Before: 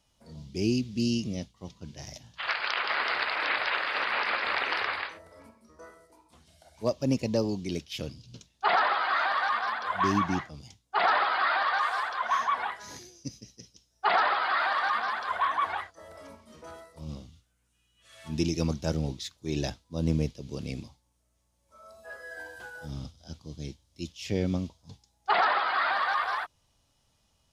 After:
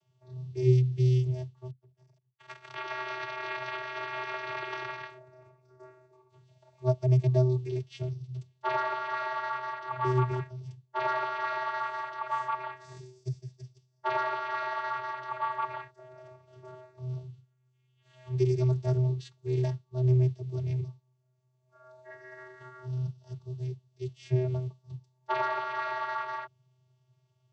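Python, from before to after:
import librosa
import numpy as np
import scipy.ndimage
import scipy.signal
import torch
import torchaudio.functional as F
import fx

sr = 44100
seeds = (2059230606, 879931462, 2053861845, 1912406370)

y = fx.power_curve(x, sr, exponent=2.0, at=(1.7, 2.75))
y = fx.vocoder(y, sr, bands=16, carrier='square', carrier_hz=127.0)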